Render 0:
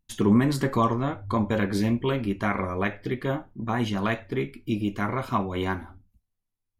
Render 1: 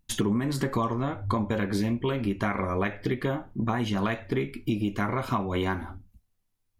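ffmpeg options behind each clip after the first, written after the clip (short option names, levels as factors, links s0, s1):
-af "acompressor=threshold=0.0282:ratio=6,volume=2.24"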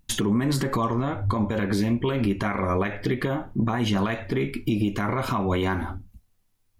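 -af "alimiter=limit=0.075:level=0:latency=1:release=88,volume=2.37"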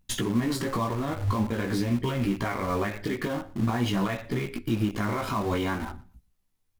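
-filter_complex "[0:a]flanger=delay=16:depth=3:speed=0.48,asplit=2[s0][s1];[s1]acrusher=bits=4:mix=0:aa=0.000001,volume=0.316[s2];[s0][s2]amix=inputs=2:normalize=0,aecho=1:1:118|236:0.0841|0.0151,volume=0.75"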